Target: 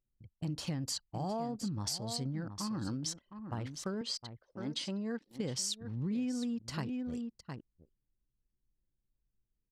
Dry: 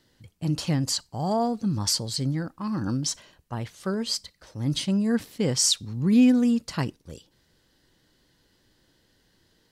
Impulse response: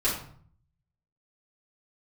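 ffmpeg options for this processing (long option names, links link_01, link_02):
-filter_complex "[0:a]asettb=1/sr,asplit=3[link_01][link_02][link_03];[link_01]atrim=end=4.014[link_04];[link_02]atrim=start=4.01:end=5.29,asetpts=PTS-STARTPTS,afade=type=in:duration=0.004:curve=qsin,afade=type=out:start_time=1.276:duration=0.004:curve=qsin,highpass=270,lowpass=7000[link_05];[link_03]atrim=start=5.286[link_06];[link_04][link_05]acrossfade=duration=0.004:curve1=hsin:curve2=qsin[link_07];[link_07][link_06]acrossfade=duration=0.004:curve1=qsin:curve2=hsin,aecho=1:1:710:0.251,acompressor=threshold=-29dB:ratio=5,anlmdn=0.0631,volume=-5dB"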